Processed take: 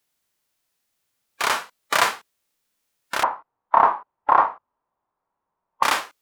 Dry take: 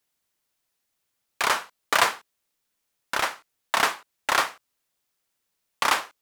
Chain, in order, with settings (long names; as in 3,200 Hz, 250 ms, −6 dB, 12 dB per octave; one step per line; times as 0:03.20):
harmonic and percussive parts rebalanced harmonic +9 dB
0:03.23–0:05.83: low-pass with resonance 970 Hz, resonance Q 3.9
level −3 dB